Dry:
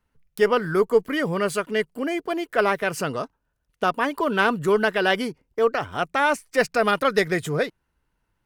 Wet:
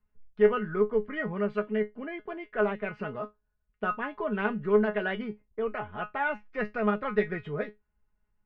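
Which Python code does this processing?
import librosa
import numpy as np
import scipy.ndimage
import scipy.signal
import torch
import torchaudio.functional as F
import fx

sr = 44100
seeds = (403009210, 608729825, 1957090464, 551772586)

y = scipy.signal.sosfilt(scipy.signal.butter(4, 2600.0, 'lowpass', fs=sr, output='sos'), x)
y = fx.low_shelf(y, sr, hz=110.0, db=12.0)
y = fx.comb_fb(y, sr, f0_hz=210.0, decay_s=0.16, harmonics='all', damping=0.0, mix_pct=90)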